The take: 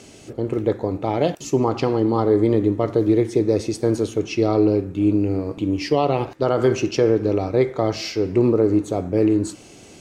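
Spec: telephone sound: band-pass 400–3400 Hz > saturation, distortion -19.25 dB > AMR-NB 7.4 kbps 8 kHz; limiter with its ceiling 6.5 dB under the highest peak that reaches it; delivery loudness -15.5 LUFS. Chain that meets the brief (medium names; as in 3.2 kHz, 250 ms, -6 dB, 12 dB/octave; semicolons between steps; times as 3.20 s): peak limiter -13.5 dBFS; band-pass 400–3400 Hz; saturation -19 dBFS; trim +14.5 dB; AMR-NB 7.4 kbps 8 kHz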